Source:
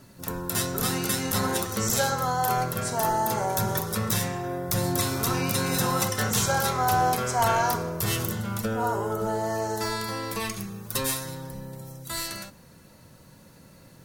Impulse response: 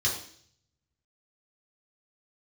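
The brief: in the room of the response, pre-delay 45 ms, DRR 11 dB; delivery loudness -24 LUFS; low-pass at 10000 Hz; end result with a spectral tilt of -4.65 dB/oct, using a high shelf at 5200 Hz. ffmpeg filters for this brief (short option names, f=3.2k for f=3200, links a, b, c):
-filter_complex "[0:a]lowpass=10k,highshelf=f=5.2k:g=-8,asplit=2[a][b];[1:a]atrim=start_sample=2205,adelay=45[c];[b][c]afir=irnorm=-1:irlink=0,volume=-19.5dB[d];[a][d]amix=inputs=2:normalize=0,volume=3.5dB"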